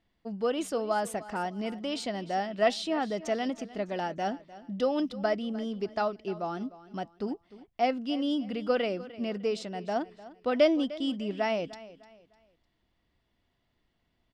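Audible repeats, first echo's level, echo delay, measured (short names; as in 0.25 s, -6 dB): 2, -17.5 dB, 0.302 s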